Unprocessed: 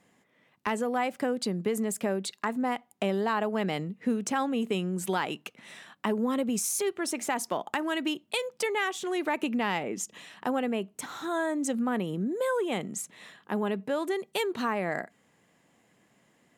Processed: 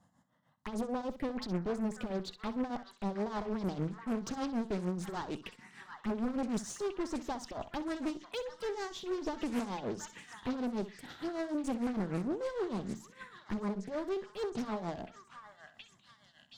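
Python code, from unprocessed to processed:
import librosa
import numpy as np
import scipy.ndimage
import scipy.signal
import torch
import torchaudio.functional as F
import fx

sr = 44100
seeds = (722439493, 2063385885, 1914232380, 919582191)

y = np.clip(x, -10.0 ** (-31.0 / 20.0), 10.0 ** (-31.0 / 20.0))
y = fx.env_phaser(y, sr, low_hz=390.0, high_hz=2500.0, full_db=-31.5)
y = fx.echo_stepped(y, sr, ms=721, hz=1600.0, octaves=0.7, feedback_pct=70, wet_db=-2)
y = fx.cheby_harmonics(y, sr, harmonics=(4,), levels_db=(-24,), full_scale_db=-25.5)
y = fx.low_shelf(y, sr, hz=200.0, db=8.5)
y = fx.tremolo_shape(y, sr, shape='triangle', hz=6.6, depth_pct=80)
y = fx.high_shelf(y, sr, hz=9000.0, db=-10.5)
y = fx.echo_feedback(y, sr, ms=64, feedback_pct=23, wet_db=-13.5)
y = fx.doppler_dist(y, sr, depth_ms=0.69)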